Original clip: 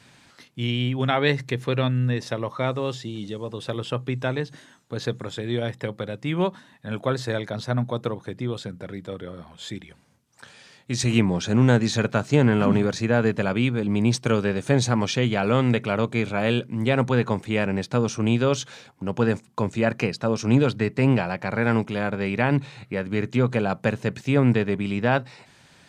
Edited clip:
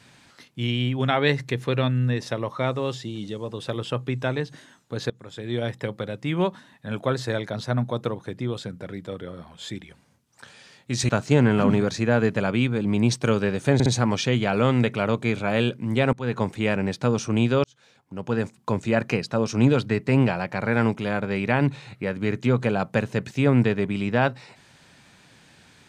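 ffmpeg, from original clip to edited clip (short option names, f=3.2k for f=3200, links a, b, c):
-filter_complex "[0:a]asplit=7[a][b][c][d][e][f][g];[a]atrim=end=5.1,asetpts=PTS-STARTPTS,afade=t=out:st=5.096:d=0.004:c=hsin:silence=0.0749894[h];[b]atrim=start=5.1:end=11.092,asetpts=PTS-STARTPTS,afade=t=in:d=0.54:silence=0.0749894[i];[c]atrim=start=12.108:end=14.822[j];[d]atrim=start=14.758:end=14.822[k];[e]atrim=start=14.758:end=17.03,asetpts=PTS-STARTPTS,afade=t=out:st=2.268:d=0.004:c=hsin:silence=0.0707946[l];[f]atrim=start=17.03:end=18.54,asetpts=PTS-STARTPTS,afade=t=in:d=0.3:silence=0.0707946,afade=t=out:st=1.506:d=0.004:c=hsin[m];[g]atrim=start=18.54,asetpts=PTS-STARTPTS,afade=t=in:d=1.06[n];[h][i]concat=n=2:v=0:a=1[o];[o][j]acrossfade=d=0.004:c1=hsin:c2=hsin[p];[p][k]acrossfade=d=0.004:c1=hsin:c2=hsin[q];[l][m][n]concat=n=3:v=0:a=1[r];[q][r]acrossfade=d=0.004:c1=hsin:c2=hsin"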